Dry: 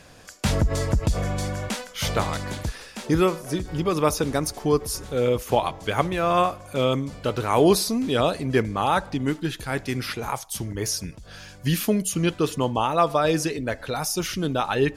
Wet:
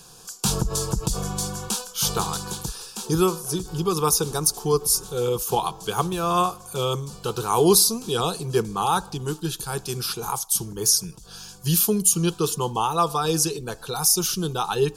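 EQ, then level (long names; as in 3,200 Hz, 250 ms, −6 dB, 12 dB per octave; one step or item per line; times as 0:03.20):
high-shelf EQ 3,900 Hz +11.5 dB
phaser with its sweep stopped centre 400 Hz, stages 8
+1.0 dB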